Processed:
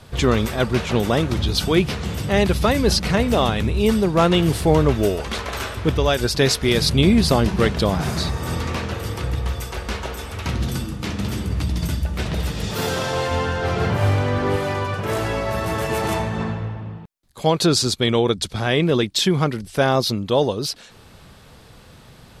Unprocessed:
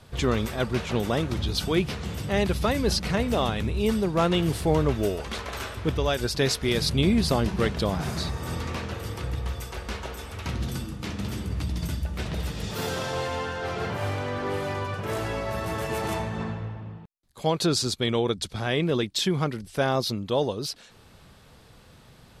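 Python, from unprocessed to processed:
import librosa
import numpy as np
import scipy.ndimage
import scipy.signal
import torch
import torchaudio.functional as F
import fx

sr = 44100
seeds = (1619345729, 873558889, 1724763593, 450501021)

y = fx.low_shelf(x, sr, hz=200.0, db=8.0, at=(13.31, 14.56))
y = y * librosa.db_to_amplitude(6.5)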